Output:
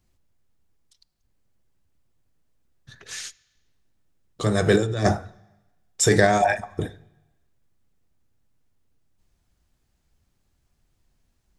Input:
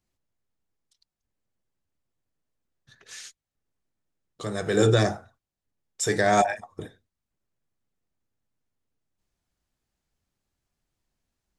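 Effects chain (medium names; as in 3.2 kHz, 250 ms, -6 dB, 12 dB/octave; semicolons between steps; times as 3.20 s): bass shelf 160 Hz +8 dB; compressor with a negative ratio -21 dBFS, ratio -0.5; on a send: reverberation RT60 1.1 s, pre-delay 3 ms, DRR 21 dB; on the sum: trim +4 dB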